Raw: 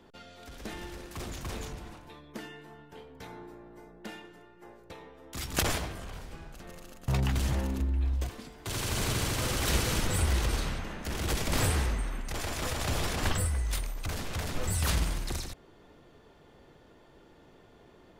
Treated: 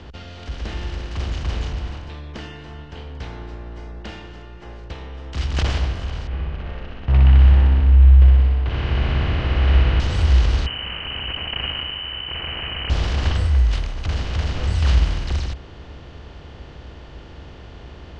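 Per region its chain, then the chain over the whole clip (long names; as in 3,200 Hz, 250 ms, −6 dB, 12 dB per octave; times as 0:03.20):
0:06.27–0:10.00: low-pass filter 2,600 Hz 24 dB per octave + flutter between parallel walls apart 10.5 metres, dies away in 1.1 s
0:10.66–0:12.90: noise gate −26 dBFS, range −16 dB + voice inversion scrambler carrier 3,000 Hz + envelope flattener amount 70%
whole clip: compressor on every frequency bin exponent 0.6; low-pass filter 5,400 Hz 24 dB per octave; parametric band 63 Hz +12.5 dB 0.97 octaves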